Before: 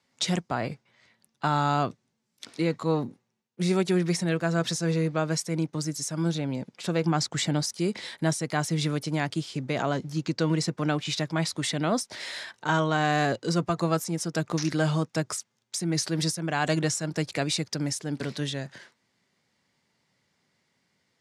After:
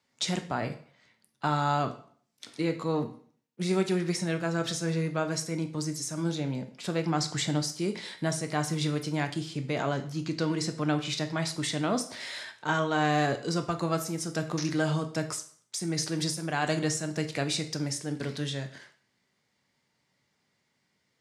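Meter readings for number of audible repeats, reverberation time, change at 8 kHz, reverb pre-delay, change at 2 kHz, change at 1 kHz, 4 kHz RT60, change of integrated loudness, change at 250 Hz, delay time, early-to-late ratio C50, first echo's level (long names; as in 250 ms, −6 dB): no echo audible, 0.55 s, −2.0 dB, 4 ms, −2.0 dB, −2.0 dB, 0.45 s, −2.5 dB, −2.5 dB, no echo audible, 12.5 dB, no echo audible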